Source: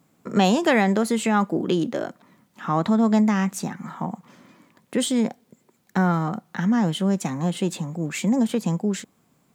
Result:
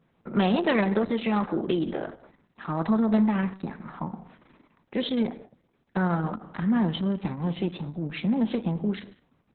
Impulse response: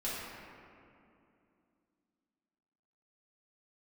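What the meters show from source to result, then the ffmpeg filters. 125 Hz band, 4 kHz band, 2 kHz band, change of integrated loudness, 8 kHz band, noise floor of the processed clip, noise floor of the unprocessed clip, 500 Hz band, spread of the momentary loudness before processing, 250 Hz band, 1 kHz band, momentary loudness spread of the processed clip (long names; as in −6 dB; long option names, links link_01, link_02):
−4.0 dB, −5.0 dB, −5.5 dB, −4.0 dB, below −40 dB, −70 dBFS, −65 dBFS, −4.0 dB, 13 LU, −4.0 dB, −6.0 dB, 14 LU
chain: -filter_complex "[0:a]adynamicsmooth=sensitivity=2:basefreq=4900,asplit=2[link_01][link_02];[1:a]atrim=start_sample=2205,atrim=end_sample=6615,asetrate=29988,aresample=44100[link_03];[link_02][link_03]afir=irnorm=-1:irlink=0,volume=-16.5dB[link_04];[link_01][link_04]amix=inputs=2:normalize=0,volume=-4.5dB" -ar 48000 -c:a libopus -b:a 6k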